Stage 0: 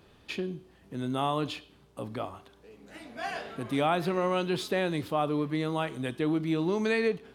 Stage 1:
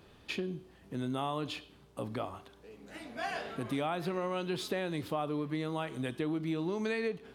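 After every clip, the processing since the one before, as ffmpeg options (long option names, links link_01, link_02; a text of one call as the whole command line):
ffmpeg -i in.wav -af "acompressor=threshold=-32dB:ratio=3" out.wav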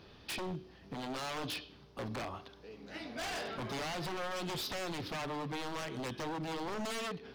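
ffmpeg -i in.wav -af "highshelf=frequency=6400:width_type=q:width=3:gain=-7.5,aeval=exprs='0.0178*(abs(mod(val(0)/0.0178+3,4)-2)-1)':channel_layout=same,volume=1.5dB" out.wav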